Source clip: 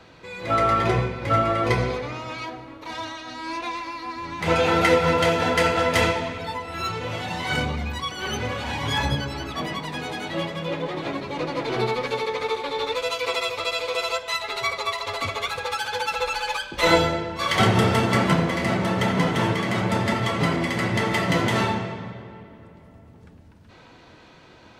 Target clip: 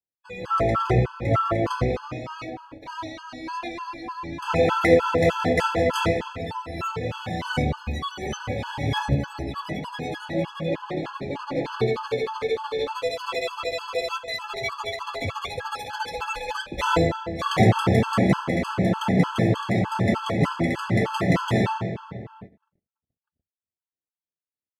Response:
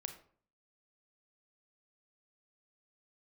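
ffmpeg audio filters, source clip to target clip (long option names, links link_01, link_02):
-filter_complex "[0:a]tiltshelf=frequency=970:gain=3,agate=range=-58dB:threshold=-39dB:ratio=16:detection=peak,asplit=2[link_01][link_02];[1:a]atrim=start_sample=2205,lowpass=2900[link_03];[link_02][link_03]afir=irnorm=-1:irlink=0,volume=-13dB[link_04];[link_01][link_04]amix=inputs=2:normalize=0,afftfilt=real='re*gt(sin(2*PI*3.3*pts/sr)*(1-2*mod(floor(b*sr/1024/850),2)),0)':imag='im*gt(sin(2*PI*3.3*pts/sr)*(1-2*mod(floor(b*sr/1024/850),2)),0)':win_size=1024:overlap=0.75"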